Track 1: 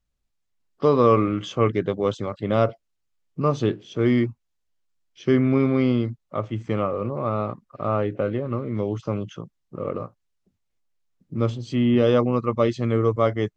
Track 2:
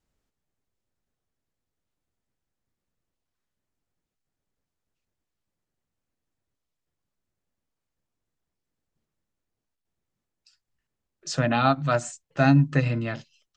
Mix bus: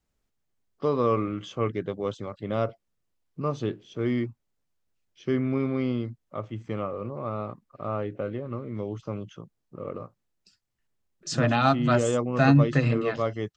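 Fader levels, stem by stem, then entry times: −7.0, −0.5 decibels; 0.00, 0.00 seconds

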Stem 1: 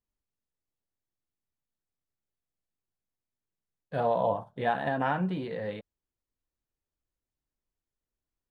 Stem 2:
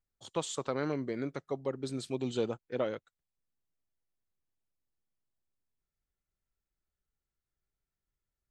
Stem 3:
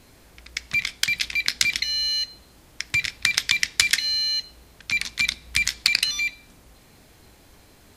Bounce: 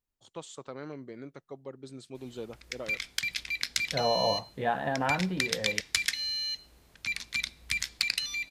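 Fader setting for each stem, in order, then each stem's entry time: −1.0, −8.0, −9.0 decibels; 0.00, 0.00, 2.15 seconds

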